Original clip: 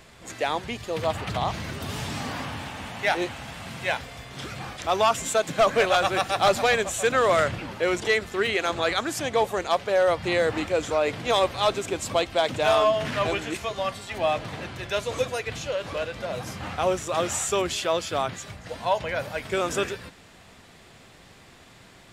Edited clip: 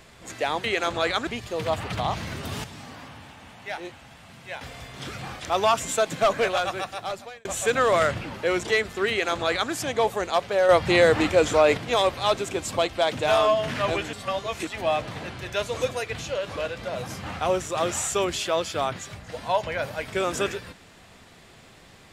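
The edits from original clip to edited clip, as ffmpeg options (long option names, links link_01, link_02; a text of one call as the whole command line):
ffmpeg -i in.wav -filter_complex "[0:a]asplit=10[link_01][link_02][link_03][link_04][link_05][link_06][link_07][link_08][link_09][link_10];[link_01]atrim=end=0.642[link_11];[link_02]atrim=start=8.458:end=9.092[link_12];[link_03]atrim=start=0.638:end=2.012[link_13];[link_04]atrim=start=2.008:end=3.982,asetpts=PTS-STARTPTS,volume=-10dB[link_14];[link_05]atrim=start=3.978:end=6.82,asetpts=PTS-STARTPTS,afade=type=out:start_time=1.502:duration=1.34[link_15];[link_06]atrim=start=6.82:end=10.062,asetpts=PTS-STARTPTS,afade=type=in:duration=0.004:curve=hsin[link_16];[link_07]atrim=start=10.058:end=11.142,asetpts=PTS-STARTPTS,volume=5.5dB[link_17];[link_08]atrim=start=11.138:end=13.502[link_18];[link_09]atrim=start=13.498:end=14.042,asetpts=PTS-STARTPTS,areverse[link_19];[link_10]atrim=start=14.038[link_20];[link_11][link_12]acrossfade=duration=0.004:curve1=hsin:curve2=hsin[link_21];[link_21][link_13]acrossfade=duration=0.004:curve1=hsin:curve2=hsin[link_22];[link_22][link_14]acrossfade=duration=0.004:curve1=hsin:curve2=hsin[link_23];[link_15][link_16]concat=n=2:v=0:a=1[link_24];[link_23][link_24]acrossfade=duration=0.004:curve1=hsin:curve2=hsin[link_25];[link_25][link_17]acrossfade=duration=0.004:curve1=hsin:curve2=hsin[link_26];[link_26][link_18]acrossfade=duration=0.004:curve1=hsin:curve2=hsin[link_27];[link_27][link_19]acrossfade=duration=0.004:curve1=hsin:curve2=hsin[link_28];[link_28][link_20]acrossfade=duration=0.004:curve1=hsin:curve2=hsin" out.wav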